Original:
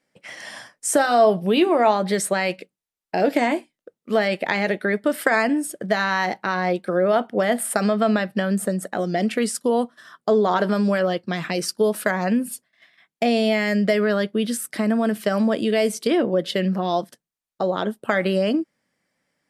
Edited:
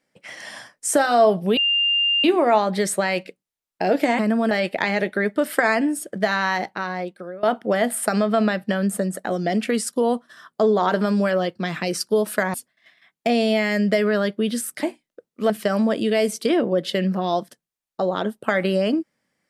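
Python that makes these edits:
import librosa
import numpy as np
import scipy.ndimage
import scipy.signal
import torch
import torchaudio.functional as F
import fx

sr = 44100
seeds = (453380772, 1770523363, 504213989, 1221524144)

y = fx.edit(x, sr, fx.insert_tone(at_s=1.57, length_s=0.67, hz=2800.0, db=-16.5),
    fx.swap(start_s=3.52, length_s=0.67, other_s=14.79, other_length_s=0.32),
    fx.fade_out_to(start_s=6.15, length_s=0.96, floor_db=-22.0),
    fx.cut(start_s=12.22, length_s=0.28), tone=tone)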